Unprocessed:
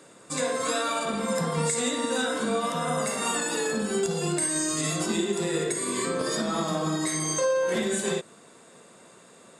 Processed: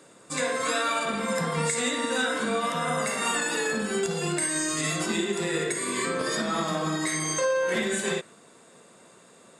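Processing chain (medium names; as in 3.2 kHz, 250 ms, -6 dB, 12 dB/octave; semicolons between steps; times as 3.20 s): dynamic bell 2 kHz, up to +7 dB, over -46 dBFS, Q 1; trim -1.5 dB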